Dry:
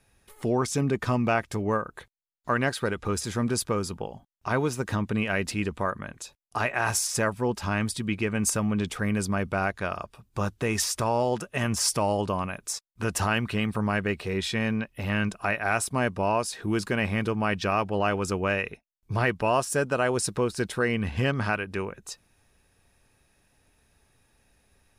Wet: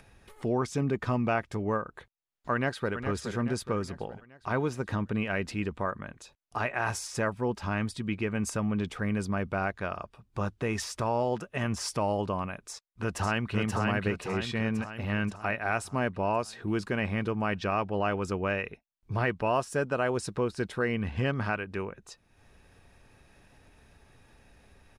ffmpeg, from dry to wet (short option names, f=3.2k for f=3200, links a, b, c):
-filter_complex "[0:a]asplit=2[a][b];[b]afade=t=in:st=2.53:d=0.01,afade=t=out:st=2.94:d=0.01,aecho=0:1:420|840|1260|1680|2100|2520:0.398107|0.199054|0.0995268|0.0497634|0.0248817|0.0124408[c];[a][c]amix=inputs=2:normalize=0,asplit=2[d][e];[e]afade=t=in:st=12.7:d=0.01,afade=t=out:st=13.55:d=0.01,aecho=0:1:530|1060|1590|2120|2650|3180|3710|4240:0.749894|0.412442|0.226843|0.124764|0.06862|0.037741|0.0207576|0.0114167[f];[d][f]amix=inputs=2:normalize=0,aemphasis=mode=reproduction:type=50kf,acompressor=mode=upward:threshold=-43dB:ratio=2.5,volume=-3dB"